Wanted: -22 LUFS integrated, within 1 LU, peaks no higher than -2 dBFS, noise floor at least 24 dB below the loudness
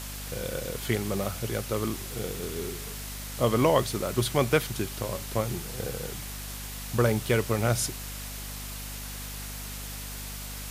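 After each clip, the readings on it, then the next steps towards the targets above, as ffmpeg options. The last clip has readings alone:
hum 50 Hz; harmonics up to 250 Hz; hum level -38 dBFS; noise floor -38 dBFS; noise floor target -54 dBFS; loudness -30.0 LUFS; peak -9.5 dBFS; loudness target -22.0 LUFS
-> -af "bandreject=f=50:t=h:w=4,bandreject=f=100:t=h:w=4,bandreject=f=150:t=h:w=4,bandreject=f=200:t=h:w=4,bandreject=f=250:t=h:w=4"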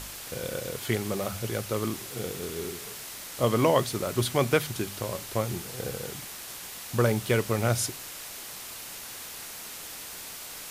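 hum none; noise floor -41 dBFS; noise floor target -55 dBFS
-> -af "afftdn=nr=14:nf=-41"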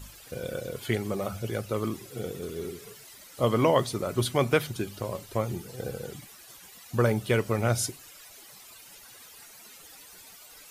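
noise floor -50 dBFS; noise floor target -54 dBFS
-> -af "afftdn=nr=6:nf=-50"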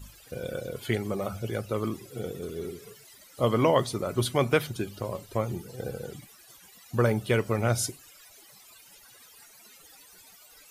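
noise floor -54 dBFS; loudness -29.5 LUFS; peak -10.0 dBFS; loudness target -22.0 LUFS
-> -af "volume=7.5dB"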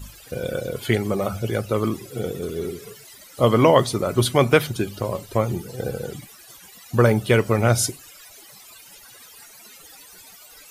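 loudness -22.0 LUFS; peak -2.5 dBFS; noise floor -47 dBFS

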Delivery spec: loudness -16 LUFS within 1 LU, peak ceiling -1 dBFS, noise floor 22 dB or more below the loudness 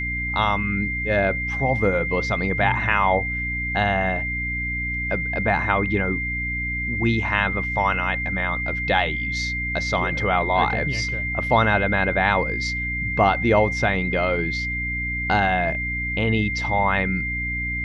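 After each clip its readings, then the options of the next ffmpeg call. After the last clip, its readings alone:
hum 60 Hz; harmonics up to 300 Hz; hum level -28 dBFS; steady tone 2100 Hz; tone level -25 dBFS; loudness -22.0 LUFS; peak -3.5 dBFS; loudness target -16.0 LUFS
-> -af "bandreject=f=60:t=h:w=4,bandreject=f=120:t=h:w=4,bandreject=f=180:t=h:w=4,bandreject=f=240:t=h:w=4,bandreject=f=300:t=h:w=4"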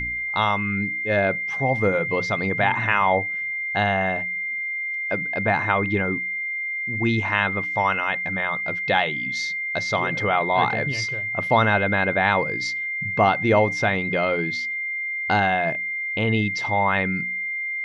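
hum none; steady tone 2100 Hz; tone level -25 dBFS
-> -af "bandreject=f=2.1k:w=30"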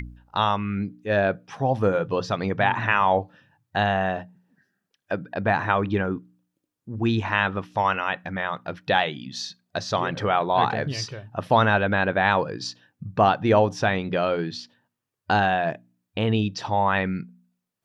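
steady tone none; loudness -24.0 LUFS; peak -5.5 dBFS; loudness target -16.0 LUFS
-> -af "volume=8dB,alimiter=limit=-1dB:level=0:latency=1"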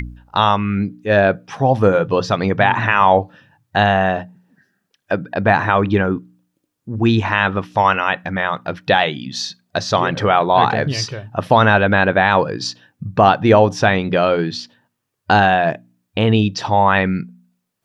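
loudness -16.5 LUFS; peak -1.0 dBFS; noise floor -75 dBFS

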